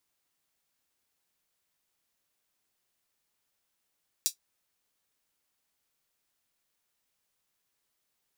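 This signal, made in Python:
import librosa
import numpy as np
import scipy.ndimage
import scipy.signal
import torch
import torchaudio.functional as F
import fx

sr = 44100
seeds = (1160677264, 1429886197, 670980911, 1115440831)

y = fx.drum_hat(sr, length_s=0.24, from_hz=4900.0, decay_s=0.11)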